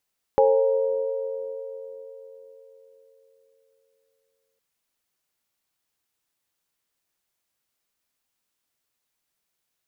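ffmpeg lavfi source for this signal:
-f lavfi -i "aevalsrc='0.119*pow(10,-3*t/4.26)*sin(2*PI*449*t)+0.168*pow(10,-3*t/3.98)*sin(2*PI*537*t)+0.119*pow(10,-3*t/0.61)*sin(2*PI*824*t)+0.0178*pow(10,-3*t/3.05)*sin(2*PI*935*t)':d=4.21:s=44100"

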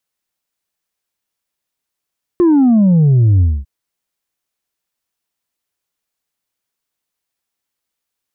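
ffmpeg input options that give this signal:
-f lavfi -i "aevalsrc='0.422*clip((1.25-t)/0.24,0,1)*tanh(1.33*sin(2*PI*360*1.25/log(65/360)*(exp(log(65/360)*t/1.25)-1)))/tanh(1.33)':d=1.25:s=44100"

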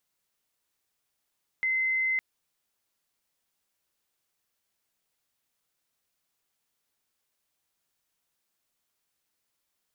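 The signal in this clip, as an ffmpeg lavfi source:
-f lavfi -i "aevalsrc='0.0631*sin(2*PI*2060*t)':d=0.56:s=44100"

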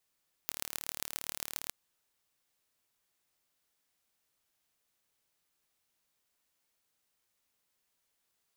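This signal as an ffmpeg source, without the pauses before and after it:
-f lavfi -i "aevalsrc='0.473*eq(mod(n,1182),0)*(0.5+0.5*eq(mod(n,5910),0))':d=1.23:s=44100"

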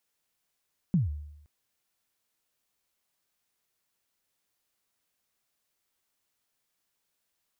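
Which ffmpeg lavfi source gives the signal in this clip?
-f lavfi -i "aevalsrc='0.119*pow(10,-3*t/0.84)*sin(2*PI*(200*0.149/log(74/200)*(exp(log(74/200)*min(t,0.149)/0.149)-1)+74*max(t-0.149,0)))':d=0.52:s=44100"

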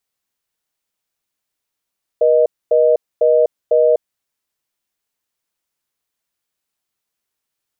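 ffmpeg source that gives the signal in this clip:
-f lavfi -i "aevalsrc='0.251*(sin(2*PI*480*t)+sin(2*PI*620*t))*clip(min(mod(t,0.5),0.25-mod(t,0.5))/0.005,0,1)':d=1.85:s=44100"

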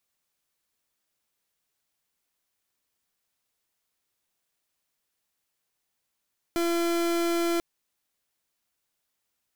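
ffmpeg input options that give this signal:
-f lavfi -i "aevalsrc='0.0531*(2*lt(mod(340*t,1),0.37)-1)':d=1.04:s=44100"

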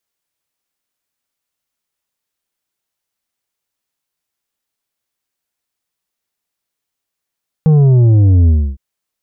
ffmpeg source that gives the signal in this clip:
-f lavfi -i "aevalsrc='0.473*clip((1.11-t)/0.29,0,1)*tanh(2.24*sin(2*PI*160*1.11/log(65/160)*(exp(log(65/160)*t/1.11)-1)))/tanh(2.24)':d=1.11:s=44100"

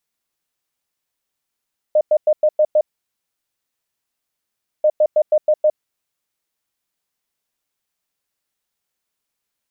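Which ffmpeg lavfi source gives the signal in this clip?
-f lavfi -i "aevalsrc='0.316*sin(2*PI*611*t)*clip(min(mod(mod(t,2.89),0.16),0.06-mod(mod(t,2.89),0.16))/0.005,0,1)*lt(mod(t,2.89),0.96)':d=5.78:s=44100"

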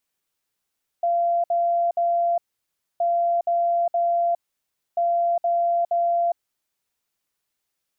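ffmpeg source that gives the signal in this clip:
-f lavfi -i "aevalsrc='0.126*sin(2*PI*688*t)*clip(min(mod(mod(t,1.97),0.47),0.41-mod(mod(t,1.97),0.47))/0.005,0,1)*lt(mod(t,1.97),1.41)':d=5.91:s=44100"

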